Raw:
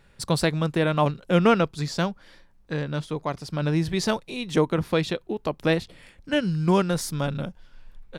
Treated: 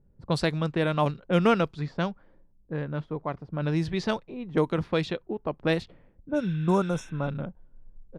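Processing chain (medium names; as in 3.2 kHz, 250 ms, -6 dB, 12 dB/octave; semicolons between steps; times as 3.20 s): spectral replace 6.32–7.26 s, 1.5–5.3 kHz after; level-controlled noise filter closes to 340 Hz, open at -17 dBFS; trim -3 dB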